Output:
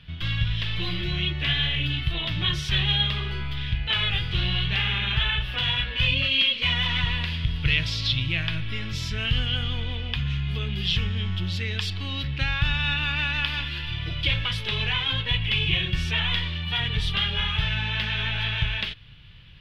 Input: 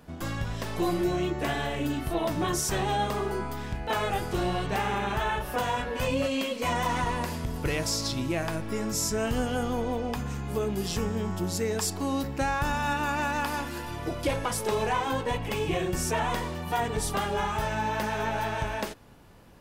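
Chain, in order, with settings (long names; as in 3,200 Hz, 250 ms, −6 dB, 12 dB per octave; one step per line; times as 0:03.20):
drawn EQ curve 140 Hz 0 dB, 240 Hz −18 dB, 780 Hz −22 dB, 3,300 Hz +10 dB, 7,300 Hz −27 dB
level +8 dB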